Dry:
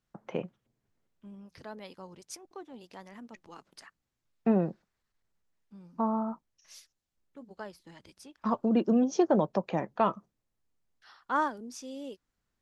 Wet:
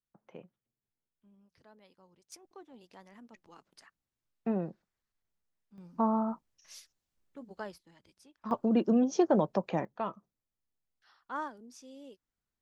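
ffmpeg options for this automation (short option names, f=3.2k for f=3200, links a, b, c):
-af "asetnsamples=n=441:p=0,asendcmd='2.32 volume volume -6.5dB;5.78 volume volume 1dB;7.78 volume volume -9.5dB;8.51 volume volume -1dB;9.85 volume volume -9dB',volume=-15.5dB"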